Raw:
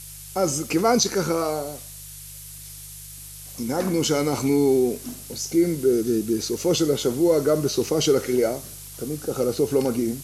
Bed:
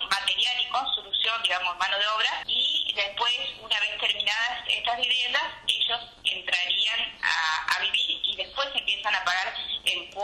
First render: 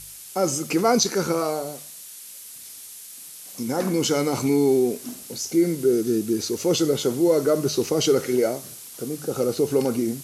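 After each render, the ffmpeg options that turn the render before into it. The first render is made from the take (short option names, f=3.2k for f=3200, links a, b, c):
-af "bandreject=f=50:t=h:w=4,bandreject=f=100:t=h:w=4,bandreject=f=150:t=h:w=4"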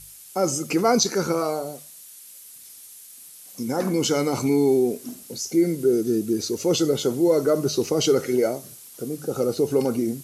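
-af "afftdn=nr=6:nf=-41"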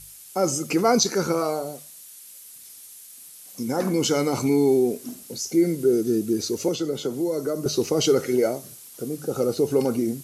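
-filter_complex "[0:a]asettb=1/sr,asplit=3[a][b][c];[a]atrim=end=6.684[d];[b]atrim=start=6.68:end=7.66,asetpts=PTS-STARTPTS,afade=t=in:d=0.004:c=qsin,afade=t=out:st=0.976:d=0.004:c=qsin,acrossover=split=130|370|4500[e][f][g][h];[e]acompressor=threshold=-54dB:ratio=3[i];[f]acompressor=threshold=-29dB:ratio=3[j];[g]acompressor=threshold=-30dB:ratio=3[k];[h]acompressor=threshold=-43dB:ratio=3[l];[i][j][k][l]amix=inputs=4:normalize=0[m];[c]atrim=start=7.656[n];[d][m]acrossfade=d=0.004:c1=hsin:c2=qsin[o];[o][n]acrossfade=d=0.004:c1=qsin:c2=hsin"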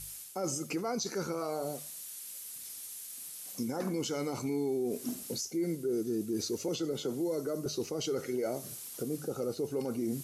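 -af "areverse,acompressor=threshold=-27dB:ratio=6,areverse,alimiter=level_in=1dB:limit=-24dB:level=0:latency=1:release=181,volume=-1dB"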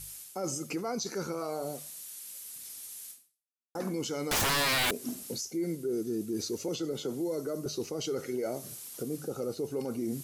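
-filter_complex "[0:a]asettb=1/sr,asplit=3[a][b][c];[a]atrim=end=4.314[d];[b]atrim=start=4.31:end=4.91,asetpts=PTS-STARTPTS,afade=t=in:d=0.004:c=qsin,afade=t=out:st=0.596:d=0.004:c=qsin,aeval=exprs='0.0596*sin(PI/2*10*val(0)/0.0596)':c=same[e];[c]atrim=start=4.906[f];[d][e]acrossfade=d=0.004:c1=hsin:c2=qsin[g];[g][f]acrossfade=d=0.004:c1=qsin:c2=hsin,asplit=2[h][i];[h]atrim=end=3.75,asetpts=PTS-STARTPTS,afade=t=out:st=3.1:d=0.65:c=exp[j];[i]atrim=start=3.75,asetpts=PTS-STARTPTS,afade=t=in:d=0.004:c=hsin[k];[j][k]concat=n=2:v=0:a=1"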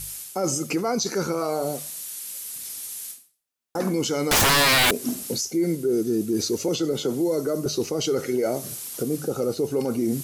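-af "volume=9.5dB"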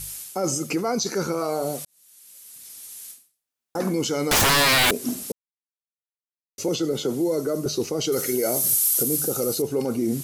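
-filter_complex "[0:a]asettb=1/sr,asplit=3[a][b][c];[a]atrim=end=8.124[d];[b]atrim=start=8.12:end=9.62,asetpts=PTS-STARTPTS,afade=t=in:d=0.004:c=qsin,afade=t=out:st=1.496:d=0.004:c=qsin,aemphasis=mode=production:type=75fm[e];[c]atrim=start=9.616[f];[d][e]acrossfade=d=0.004:c1=hsin:c2=qsin[g];[g][f]acrossfade=d=0.004:c1=qsin:c2=hsin,asplit=4[h][i][j][k];[h]atrim=end=1.85,asetpts=PTS-STARTPTS,afade=t=out:st=1.846:d=0.004:c=hsin[l];[i]atrim=start=1.85:end=5.32,asetpts=PTS-STARTPTS,afade=t=in:d=1.95,afade=t=out:st=3.466:d=0.004:c=hsin[m];[j]atrim=start=5.32:end=6.58,asetpts=PTS-STARTPTS,volume=0[n];[k]atrim=start=6.58,asetpts=PTS-STARTPTS,afade=t=in:d=0.004:c=hsin[o];[l][m][n][o]concat=n=4:v=0:a=1"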